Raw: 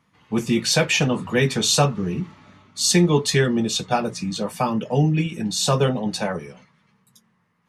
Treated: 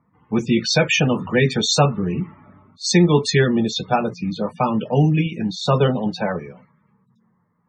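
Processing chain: vibrato 14 Hz 22 cents; loudest bins only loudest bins 64; level-controlled noise filter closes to 1.1 kHz, open at -14.5 dBFS; trim +2.5 dB

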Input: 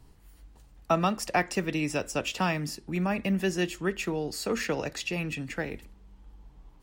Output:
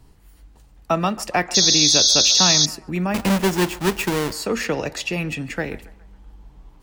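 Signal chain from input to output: 3.14–4.33 s: square wave that keeps the level; in parallel at -1.5 dB: gain riding within 3 dB; on the sum: band-passed feedback delay 138 ms, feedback 52%, band-pass 1 kHz, level -17 dB; 1.54–2.66 s: painted sound noise 3.3–6.7 kHz -16 dBFS

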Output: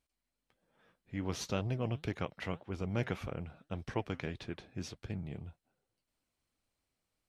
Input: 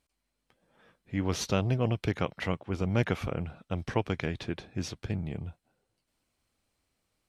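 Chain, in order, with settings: flange 1.8 Hz, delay 0.4 ms, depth 7.7 ms, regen +80%; trim -2.5 dB

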